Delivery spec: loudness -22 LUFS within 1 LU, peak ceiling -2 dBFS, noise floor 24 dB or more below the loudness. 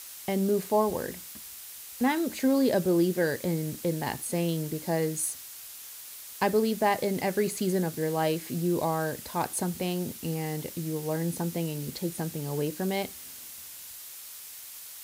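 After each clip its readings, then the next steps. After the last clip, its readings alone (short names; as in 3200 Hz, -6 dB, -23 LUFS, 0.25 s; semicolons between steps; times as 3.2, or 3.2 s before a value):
noise floor -44 dBFS; noise floor target -53 dBFS; loudness -29.0 LUFS; peak -12.5 dBFS; loudness target -22.0 LUFS
-> noise print and reduce 9 dB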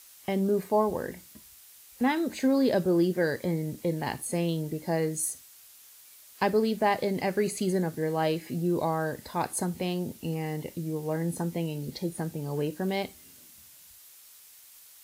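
noise floor -53 dBFS; loudness -29.0 LUFS; peak -12.5 dBFS; loudness target -22.0 LUFS
-> gain +7 dB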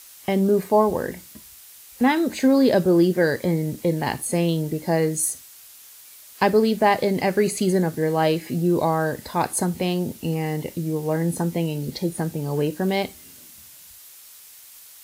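loudness -22.0 LUFS; peak -5.5 dBFS; noise floor -46 dBFS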